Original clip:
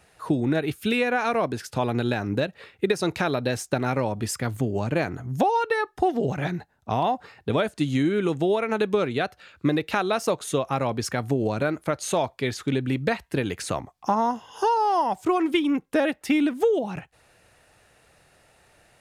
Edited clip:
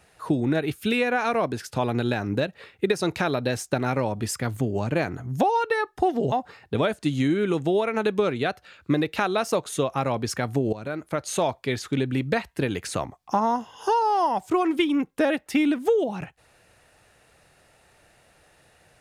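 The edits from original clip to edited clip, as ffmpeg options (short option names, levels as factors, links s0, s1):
-filter_complex "[0:a]asplit=3[s0][s1][s2];[s0]atrim=end=6.322[s3];[s1]atrim=start=7.068:end=11.48,asetpts=PTS-STARTPTS,afade=t=out:st=4.408:d=0.004:c=hsin:silence=0.223872[s4];[s2]atrim=start=11.48,asetpts=PTS-STARTPTS,afade=t=in:d=0.56:silence=0.223872[s5];[s4][s5]concat=n=2:v=0:a=1[s6];[s3][s6]acrossfade=d=0.004:c1=hsin:c2=hsin"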